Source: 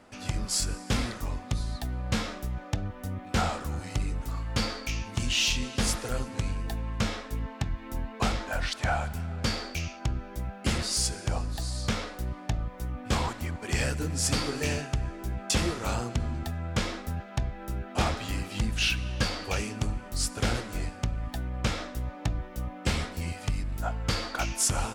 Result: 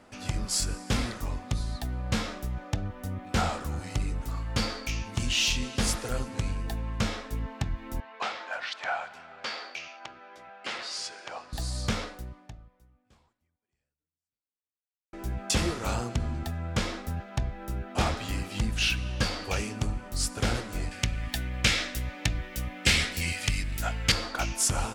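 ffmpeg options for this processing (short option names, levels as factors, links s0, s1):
-filter_complex "[0:a]asettb=1/sr,asplit=3[s0][s1][s2];[s0]atrim=end=8.004[s3];[s1]atrim=start=8:end=11.53,asetpts=PTS-STARTPTS,afade=t=in:d=0.004:c=qsin,afade=t=out:st=3.526:d=0.004:c=qsin,highpass=690,lowpass=4000[s4];[s2]atrim=start=11.526[s5];[s3][s4]acrossfade=d=0.004:c1=hsin:c2=qsin[s6];[s6][s5]acrossfade=d=0.004:c1=qsin:c2=hsin,asettb=1/sr,asplit=3[s7][s8][s9];[s7]atrim=end=20.914[s10];[s8]atrim=start=20.91:end=24.12,asetpts=PTS-STARTPTS,afade=t=in:d=0.004:c=qsin,afade=t=out:st=3.206:d=0.004:c=qsin,highshelf=f=1500:t=q:w=1.5:g=9.5[s11];[s9]atrim=start=24.116[s12];[s10][s11]acrossfade=d=0.004:c1=hsin:c2=qsin[s13];[s13][s12]acrossfade=d=0.004:c1=qsin:c2=hsin,asplit=2[s14][s15];[s14]atrim=end=15.13,asetpts=PTS-STARTPTS,afade=t=out:st=12.03:d=3.1:c=exp[s16];[s15]atrim=start=15.13,asetpts=PTS-STARTPTS,afade=t=in:d=0.004:c=hsin[s17];[s16][s17]concat=n=2:v=0:a=1"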